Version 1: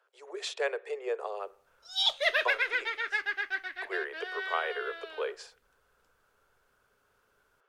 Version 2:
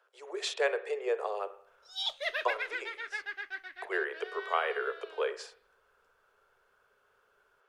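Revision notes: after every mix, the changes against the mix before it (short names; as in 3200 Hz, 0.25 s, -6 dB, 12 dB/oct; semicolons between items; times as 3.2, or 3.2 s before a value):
speech: send +10.0 dB; background -7.0 dB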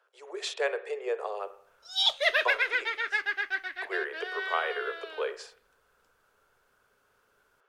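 background +9.0 dB; master: add low shelf 120 Hz -5 dB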